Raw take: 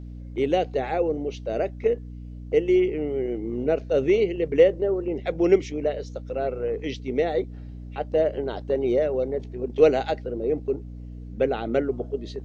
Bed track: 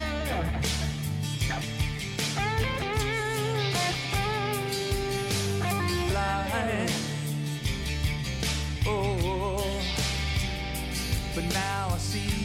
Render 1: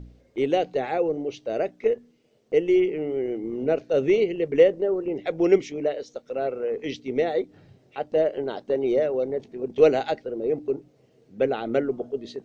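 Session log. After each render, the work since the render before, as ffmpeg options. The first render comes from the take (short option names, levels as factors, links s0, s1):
-af "bandreject=f=60:t=h:w=4,bandreject=f=120:t=h:w=4,bandreject=f=180:t=h:w=4,bandreject=f=240:t=h:w=4,bandreject=f=300:t=h:w=4"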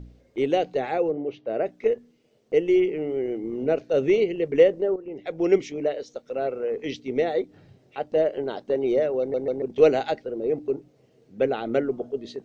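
-filter_complex "[0:a]asplit=3[s0][s1][s2];[s0]afade=t=out:st=1.1:d=0.02[s3];[s1]highpass=100,lowpass=2300,afade=t=in:st=1.1:d=0.02,afade=t=out:st=1.65:d=0.02[s4];[s2]afade=t=in:st=1.65:d=0.02[s5];[s3][s4][s5]amix=inputs=3:normalize=0,asplit=5[s6][s7][s8][s9][s10];[s6]atrim=end=4.96,asetpts=PTS-STARTPTS,afade=t=out:st=4.956:d=0.004:c=hsin:silence=0.251189[s11];[s7]atrim=start=4.96:end=9.342,asetpts=PTS-STARTPTS,afade=t=in:d=0.69:silence=0.251189[s12];[s8]atrim=start=9.198:end=9.342[s13];[s9]atrim=start=9.198:end=9.342[s14];[s10]atrim=start=9.618[s15];[s11][s12]concat=n=2:v=0:a=1[s16];[s16][s13]acrossfade=d=0.004:c1=hsin:c2=hsin[s17];[s17][s14]acrossfade=d=0.004:c1=hsin:c2=hsin[s18];[s18][s15]acrossfade=d=0.004:c1=hsin:c2=hsin"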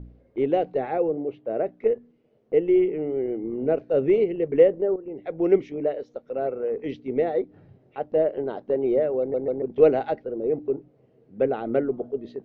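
-af "lowpass=f=1700:p=1,aemphasis=mode=reproduction:type=75fm"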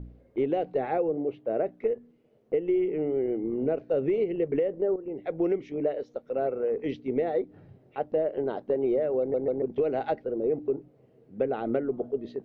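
-af "alimiter=limit=0.2:level=0:latency=1:release=256,acompressor=threshold=0.0794:ratio=6"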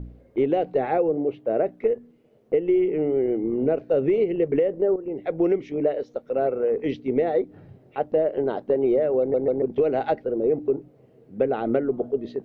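-af "volume=1.78"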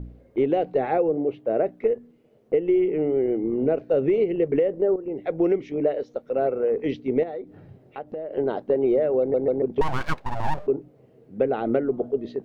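-filter_complex "[0:a]asettb=1/sr,asplit=3[s0][s1][s2];[s0]atrim=end=7.234[s3];[s1]atrim=start=7.23:end=8.31,asetpts=PTS-STARTPTS,afade=t=in:d=0.004:c=qsin,afade=t=out:st=1.076:d=0.004:c=qsin,acompressor=threshold=0.0282:ratio=4:attack=3.2:release=140:knee=1:detection=peak[s4];[s2]atrim=start=8.306[s5];[s3][s4]acrossfade=d=0.004:c1=hsin:c2=qsin[s6];[s6][s5]acrossfade=d=0.004:c1=qsin:c2=hsin,asettb=1/sr,asplit=3[s7][s8][s9];[s7]atrim=end=9.814[s10];[s8]atrim=start=9.81:end=10.67,asetpts=PTS-STARTPTS,afade=t=in:d=0.004:c=qsin,afade=t=out:st=0.856:d=0.004:c=qsin,aeval=exprs='abs(val(0))':c=same[s11];[s9]atrim=start=10.666[s12];[s10][s11]acrossfade=d=0.004:c1=hsin:c2=qsin[s13];[s13][s12]acrossfade=d=0.004:c1=qsin:c2=hsin"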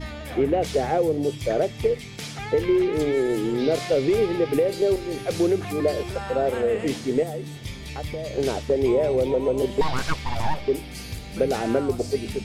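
-filter_complex "[1:a]volume=0.531[s0];[0:a][s0]amix=inputs=2:normalize=0"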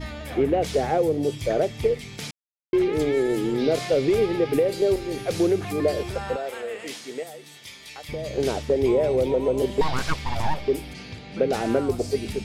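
-filter_complex "[0:a]asettb=1/sr,asplit=3[s0][s1][s2];[s0]atrim=end=6.364[s3];[s1]atrim=start=6.36:end=8.09,asetpts=PTS-STARTPTS,afade=t=in:d=0.004:c=qsin,afade=t=out:st=1.726:d=0.004:c=qsin,highpass=f=1400:p=1[s4];[s2]atrim=start=8.086[s5];[s3][s4]acrossfade=d=0.004:c1=hsin:c2=qsin[s6];[s6][s5]acrossfade=d=0.004:c1=qsin:c2=hsin,asettb=1/sr,asplit=3[s7][s8][s9];[s7]atrim=end=10.934[s10];[s8]atrim=start=10.93:end=11.53,asetpts=PTS-STARTPTS,afade=t=in:d=0.004:c=qsin,afade=t=out:st=0.596:d=0.004:c=qsin,highpass=120,lowpass=4000[s11];[s9]atrim=start=11.526[s12];[s10][s11]acrossfade=d=0.004:c1=hsin:c2=qsin[s13];[s13][s12]acrossfade=d=0.004:c1=qsin:c2=hsin,asplit=3[s14][s15][s16];[s14]atrim=end=2.31,asetpts=PTS-STARTPTS,afade=t=out:st=2.306:d=0.004:c=hsin[s17];[s15]atrim=start=2.31:end=2.73,asetpts=PTS-STARTPTS,volume=0[s18];[s16]atrim=start=2.73,asetpts=PTS-STARTPTS,afade=t=in:d=0.004:c=hsin[s19];[s17][s18][s19]concat=n=3:v=0:a=1"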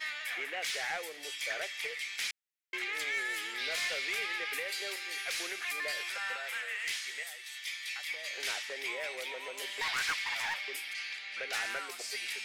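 -af "highpass=f=1900:t=q:w=2.2,asoftclip=type=tanh:threshold=0.0447"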